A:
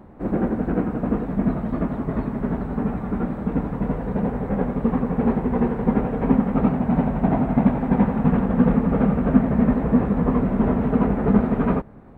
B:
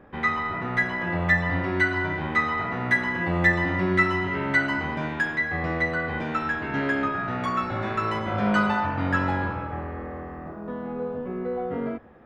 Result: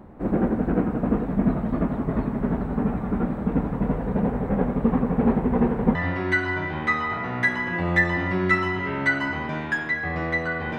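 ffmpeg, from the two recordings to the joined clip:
ffmpeg -i cue0.wav -i cue1.wav -filter_complex "[0:a]apad=whole_dur=10.78,atrim=end=10.78,atrim=end=5.952[link_01];[1:a]atrim=start=1.428:end=6.26[link_02];[link_01][link_02]acrossfade=duration=0.004:curve1=hsin:curve2=hsin" out.wav

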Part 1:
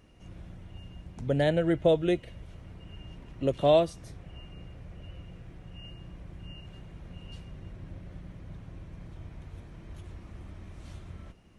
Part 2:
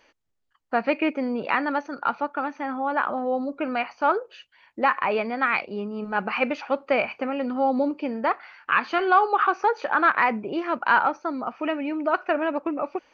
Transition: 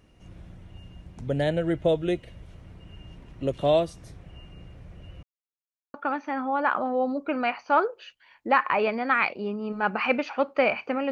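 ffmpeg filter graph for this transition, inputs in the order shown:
ffmpeg -i cue0.wav -i cue1.wav -filter_complex "[0:a]apad=whole_dur=11.11,atrim=end=11.11,asplit=2[link_01][link_02];[link_01]atrim=end=5.23,asetpts=PTS-STARTPTS,afade=type=out:start_time=5.226:duration=0.004:curve=hsin[link_03];[link_02]atrim=start=5.23:end=5.94,asetpts=PTS-STARTPTS,volume=0[link_04];[1:a]atrim=start=2.26:end=7.43,asetpts=PTS-STARTPTS,afade=type=in:duration=0.004:curve=hsin[link_05];[link_03][link_04][link_05]concat=n=3:v=0:a=1" out.wav

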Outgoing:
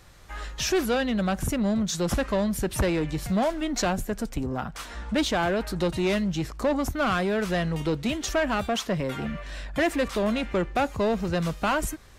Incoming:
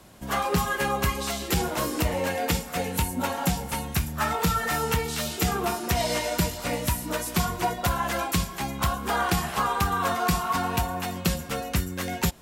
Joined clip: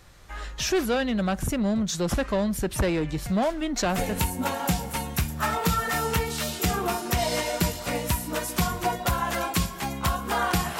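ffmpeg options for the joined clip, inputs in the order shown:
ffmpeg -i cue0.wav -i cue1.wav -filter_complex "[0:a]apad=whole_dur=10.79,atrim=end=10.79,atrim=end=4.21,asetpts=PTS-STARTPTS[link_01];[1:a]atrim=start=2.67:end=9.57,asetpts=PTS-STARTPTS[link_02];[link_01][link_02]acrossfade=duration=0.32:curve1=log:curve2=log" out.wav

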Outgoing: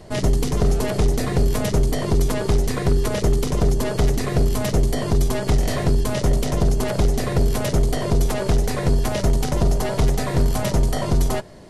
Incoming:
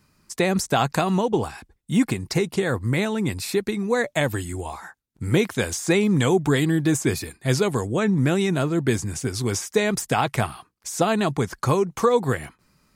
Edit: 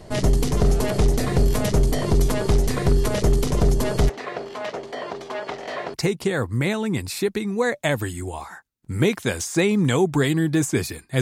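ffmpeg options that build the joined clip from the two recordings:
ffmpeg -i cue0.wav -i cue1.wav -filter_complex "[0:a]asplit=3[link_01][link_02][link_03];[link_01]afade=type=out:start_time=4.08:duration=0.02[link_04];[link_02]highpass=590,lowpass=2800,afade=type=in:start_time=4.08:duration=0.02,afade=type=out:start_time=5.94:duration=0.02[link_05];[link_03]afade=type=in:start_time=5.94:duration=0.02[link_06];[link_04][link_05][link_06]amix=inputs=3:normalize=0,apad=whole_dur=11.21,atrim=end=11.21,atrim=end=5.942[link_07];[1:a]atrim=start=2.258:end=7.53[link_08];[link_07][link_08]acrossfade=duration=0.004:curve1=hsin:curve2=hsin" out.wav

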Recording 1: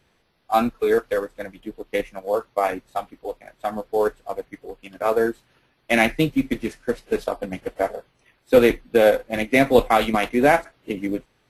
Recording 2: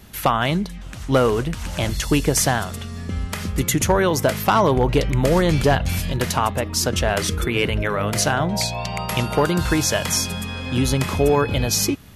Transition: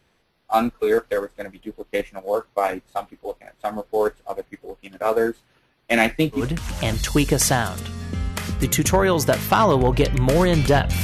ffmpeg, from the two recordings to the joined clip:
ffmpeg -i cue0.wav -i cue1.wav -filter_complex "[0:a]apad=whole_dur=11.03,atrim=end=11.03,atrim=end=6.46,asetpts=PTS-STARTPTS[link_01];[1:a]atrim=start=1.28:end=5.99,asetpts=PTS-STARTPTS[link_02];[link_01][link_02]acrossfade=duration=0.14:curve1=tri:curve2=tri" out.wav

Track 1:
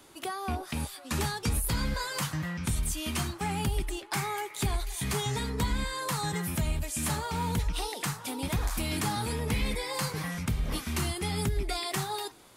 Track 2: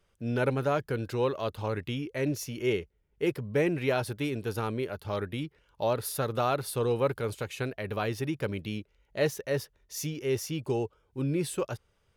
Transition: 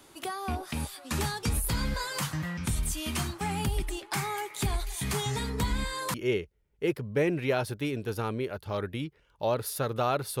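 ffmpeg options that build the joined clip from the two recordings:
ffmpeg -i cue0.wav -i cue1.wav -filter_complex "[0:a]apad=whole_dur=10.4,atrim=end=10.4,atrim=end=6.142[link_01];[1:a]atrim=start=2.528:end=6.79[link_02];[link_01][link_02]acrossfade=duration=0.004:curve1=hsin:curve2=hsin" out.wav

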